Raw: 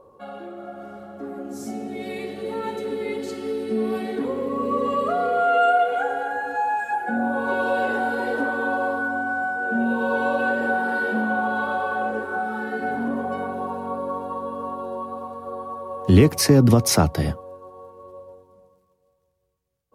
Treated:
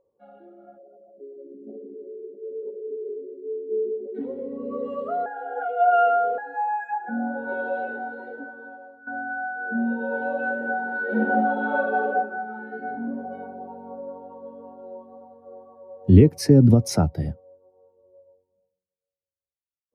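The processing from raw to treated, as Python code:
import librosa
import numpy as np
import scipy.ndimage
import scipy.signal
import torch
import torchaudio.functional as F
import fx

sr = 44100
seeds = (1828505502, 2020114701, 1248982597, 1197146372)

y = fx.envelope_sharpen(x, sr, power=3.0, at=(0.77, 4.14), fade=0.02)
y = fx.reverb_throw(y, sr, start_s=11.04, length_s=1.04, rt60_s=1.1, drr_db=-6.5)
y = fx.edit(y, sr, fx.reverse_span(start_s=5.26, length_s=1.12),
    fx.fade_out_to(start_s=7.57, length_s=1.5, floor_db=-14.5), tone=tone)
y = fx.notch(y, sr, hz=1100.0, q=6.9)
y = fx.spectral_expand(y, sr, expansion=1.5)
y = y * librosa.db_to_amplitude(1.5)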